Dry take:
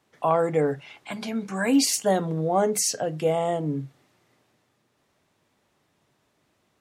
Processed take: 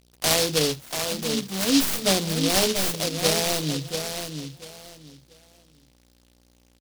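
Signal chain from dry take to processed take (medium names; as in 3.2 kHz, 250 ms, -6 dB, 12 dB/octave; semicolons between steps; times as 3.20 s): tracing distortion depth 0.11 ms; bit crusher 8-bit; mains buzz 60 Hz, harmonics 27, -60 dBFS -4 dB/octave; feedback delay 687 ms, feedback 23%, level -7 dB; delay time shaken by noise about 4.1 kHz, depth 0.26 ms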